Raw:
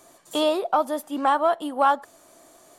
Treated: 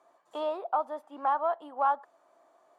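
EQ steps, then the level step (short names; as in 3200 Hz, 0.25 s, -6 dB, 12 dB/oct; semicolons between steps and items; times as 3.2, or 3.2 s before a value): band-pass 910 Hz, Q 1.4; -5.5 dB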